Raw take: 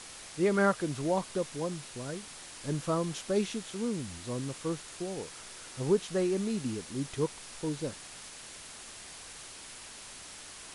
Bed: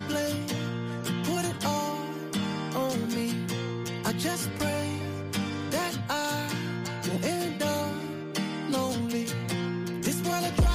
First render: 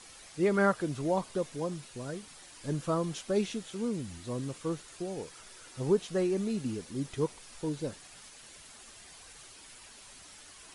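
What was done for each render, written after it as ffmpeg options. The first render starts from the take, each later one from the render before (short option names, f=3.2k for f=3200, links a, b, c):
-af "afftdn=nr=8:nf=-48"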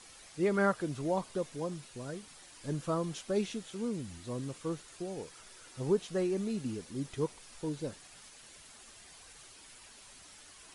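-af "volume=-2.5dB"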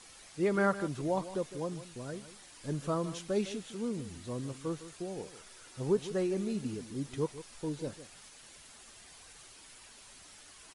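-filter_complex "[0:a]asplit=2[a][b];[b]adelay=157.4,volume=-14dB,highshelf=f=4k:g=-3.54[c];[a][c]amix=inputs=2:normalize=0"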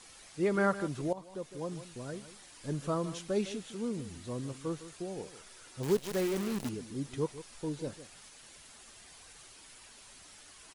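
-filter_complex "[0:a]asettb=1/sr,asplit=3[a][b][c];[a]atrim=end=5.834[d];[b]atrim=start=5.83:end=6.69,asetpts=PTS-STARTPTS,afade=t=in:d=0.004:c=qsin,afade=t=out:st=0.856:d=0.004:c=qsin,acrusher=bits=7:dc=4:mix=0:aa=0.000001[e];[c]atrim=start=6.686[f];[d][e]acrossfade=d=0.004:c1=hsin:c2=qsin[g];[g][f]acrossfade=d=0.004:c1=qsin:c2=hsin,asplit=2[h][i];[h]atrim=end=1.13,asetpts=PTS-STARTPTS,afade=t=out:st=1.126:d=0.004:c=hsin:silence=0.158489[j];[i]atrim=start=1.13,asetpts=PTS-STARTPTS,afade=t=in:d=0.65:silence=0.158489[k];[j][k]concat=n=2:v=0:a=1"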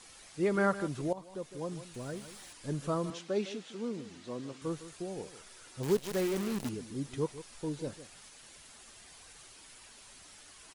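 -filter_complex "[0:a]asettb=1/sr,asplit=3[a][b][c];[a]atrim=end=1.944[d];[b]atrim=start=1.94:end=2.53,asetpts=PTS-STARTPTS,afade=t=in:d=0.004:c=qsin,afade=t=out:st=0.586:d=0.004:c=qsin,aeval=exprs='val(0)+0.5*0.00237*sgn(val(0))':c=same[e];[c]atrim=start=2.526[f];[d][e]acrossfade=d=0.004:c1=hsin:c2=qsin[g];[g][f]acrossfade=d=0.004:c1=qsin:c2=hsin,asettb=1/sr,asplit=3[h][i][j];[h]atrim=end=3.104[k];[i]atrim=start=3.1:end=4.62,asetpts=PTS-STARTPTS,afade=t=in:d=0.004:c=qsin,afade=t=out:st=1.516:d=0.004:c=qsin,highpass=210,lowpass=6k[l];[j]atrim=start=4.616[m];[k][l]acrossfade=d=0.004:c1=hsin:c2=qsin[n];[n][m]acrossfade=d=0.004:c1=qsin:c2=hsin"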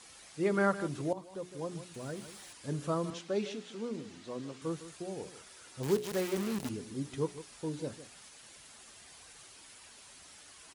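-af "highpass=50,bandreject=f=60:t=h:w=6,bandreject=f=120:t=h:w=6,bandreject=f=180:t=h:w=6,bandreject=f=240:t=h:w=6,bandreject=f=300:t=h:w=6,bandreject=f=360:t=h:w=6,bandreject=f=420:t=h:w=6"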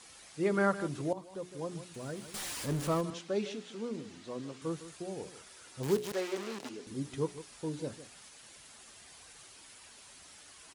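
-filter_complex "[0:a]asettb=1/sr,asplit=3[a][b][c];[a]atrim=end=2.344[d];[b]atrim=start=2.34:end=3.01,asetpts=PTS-STARTPTS,afade=t=in:d=0.004:c=qsin,afade=t=out:st=0.666:d=0.004:c=qsin,aeval=exprs='val(0)+0.5*0.0158*sgn(val(0))':c=same[e];[c]atrim=start=3.006[f];[d][e]acrossfade=d=0.004:c1=hsin:c2=qsin[g];[g][f]acrossfade=d=0.004:c1=qsin:c2=hsin,asettb=1/sr,asplit=3[h][i][j];[h]atrim=end=6.124[k];[i]atrim=start=6.12:end=6.87,asetpts=PTS-STARTPTS,afade=t=in:d=0.004:c=qsin,afade=t=out:st=0.746:d=0.004:c=qsin,acrossover=split=280 8000:gain=0.0708 1 0.178[l][m][n];[l][m][n]amix=inputs=3:normalize=0[o];[j]atrim=start=6.866[p];[k][o]acrossfade=d=0.004:c1=hsin:c2=qsin[q];[q][p]acrossfade=d=0.004:c1=qsin:c2=hsin"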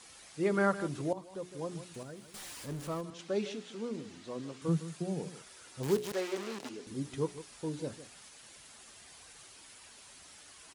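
-filter_complex "[0:a]asettb=1/sr,asplit=3[a][b][c];[a]atrim=end=4.684[d];[b]atrim=start=4.68:end=5.42,asetpts=PTS-STARTPTS,afade=t=in:d=0.004:c=qsin,afade=t=out:st=0.736:d=0.004:c=qsin,highpass=f=160:t=q:w=4.9[e];[c]atrim=start=5.416[f];[d][e]acrossfade=d=0.004:c1=hsin:c2=qsin[g];[g][f]acrossfade=d=0.004:c1=qsin:c2=hsin,asplit=3[h][i][j];[h]atrim=end=2.032[k];[i]atrim=start=2.028:end=3.192,asetpts=PTS-STARTPTS,volume=-6.5dB[l];[j]atrim=start=3.188[m];[k][l]acrossfade=d=0.004:c1=hsin:c2=hsin[n];[n][m]acrossfade=d=0.004:c1=hsin:c2=hsin"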